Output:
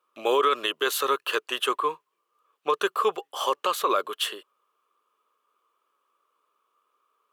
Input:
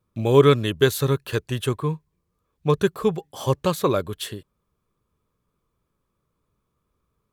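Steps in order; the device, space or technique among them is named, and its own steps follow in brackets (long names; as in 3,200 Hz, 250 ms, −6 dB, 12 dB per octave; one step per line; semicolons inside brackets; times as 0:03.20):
laptop speaker (high-pass filter 400 Hz 24 dB per octave; parametric band 1,200 Hz +12 dB 0.6 octaves; parametric band 2,900 Hz +10 dB 0.37 octaves; brickwall limiter −13 dBFS, peak gain reduction 11.5 dB)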